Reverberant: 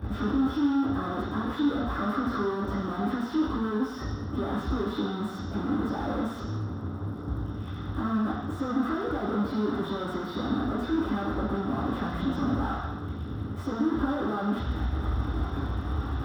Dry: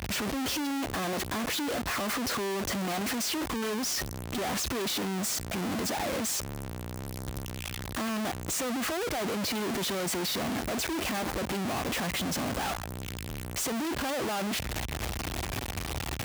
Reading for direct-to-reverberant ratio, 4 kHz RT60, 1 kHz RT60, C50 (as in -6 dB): -10.5 dB, 1.2 s, 1.1 s, 2.0 dB